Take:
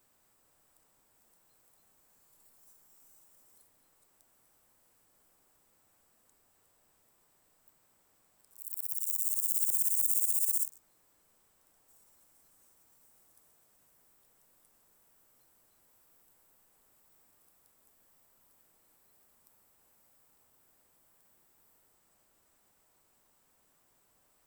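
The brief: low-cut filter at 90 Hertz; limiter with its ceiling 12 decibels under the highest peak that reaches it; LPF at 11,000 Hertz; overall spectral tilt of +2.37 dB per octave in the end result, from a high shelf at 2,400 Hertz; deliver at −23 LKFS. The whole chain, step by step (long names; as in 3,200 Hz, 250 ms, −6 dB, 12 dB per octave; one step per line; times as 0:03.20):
high-pass filter 90 Hz
low-pass filter 11,000 Hz
high-shelf EQ 2,400 Hz +9 dB
level +12 dB
brickwall limiter −13.5 dBFS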